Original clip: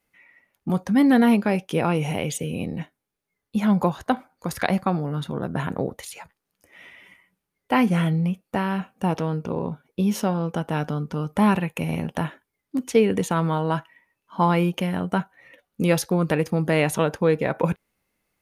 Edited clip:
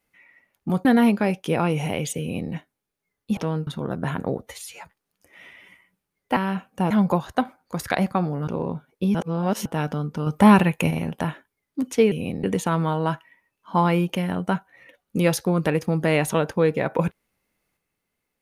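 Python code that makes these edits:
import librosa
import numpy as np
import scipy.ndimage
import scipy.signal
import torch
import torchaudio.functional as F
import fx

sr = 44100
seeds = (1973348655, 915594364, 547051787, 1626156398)

y = fx.edit(x, sr, fx.cut(start_s=0.85, length_s=0.25),
    fx.duplicate(start_s=2.45, length_s=0.32, to_s=13.08),
    fx.swap(start_s=3.62, length_s=1.57, other_s=9.14, other_length_s=0.3),
    fx.stretch_span(start_s=5.94, length_s=0.25, factor=1.5),
    fx.cut(start_s=7.76, length_s=0.84),
    fx.reverse_span(start_s=10.11, length_s=0.51),
    fx.clip_gain(start_s=11.23, length_s=0.64, db=5.5), tone=tone)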